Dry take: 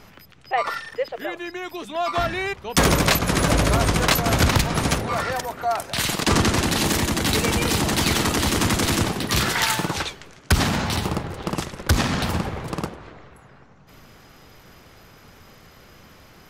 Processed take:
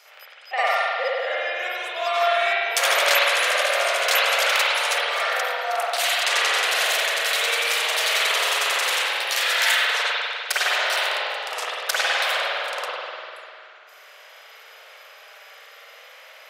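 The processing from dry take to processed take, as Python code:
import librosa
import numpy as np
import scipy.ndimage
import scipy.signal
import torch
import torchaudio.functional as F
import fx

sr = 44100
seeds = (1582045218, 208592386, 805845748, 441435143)

p1 = scipy.signal.sosfilt(scipy.signal.butter(8, 540.0, 'highpass', fs=sr, output='sos'), x)
p2 = fx.env_lowpass(p1, sr, base_hz=2500.0, full_db=-22.0, at=(0.86, 1.58), fade=0.02)
p3 = fx.peak_eq(p2, sr, hz=900.0, db=-10.5, octaves=1.3)
p4 = fx.rider(p3, sr, range_db=5, speed_s=2.0)
p5 = p3 + (p4 * librosa.db_to_amplitude(-2.0))
p6 = fx.rev_spring(p5, sr, rt60_s=2.3, pass_ms=(49,), chirp_ms=65, drr_db=-9.5)
y = p6 * librosa.db_to_amplitude(-6.5)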